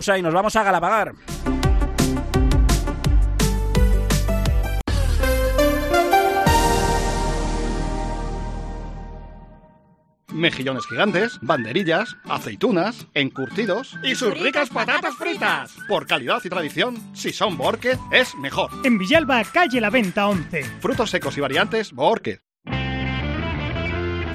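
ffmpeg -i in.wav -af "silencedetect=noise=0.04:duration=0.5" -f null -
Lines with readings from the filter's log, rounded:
silence_start: 9.17
silence_end: 10.32 | silence_duration: 1.15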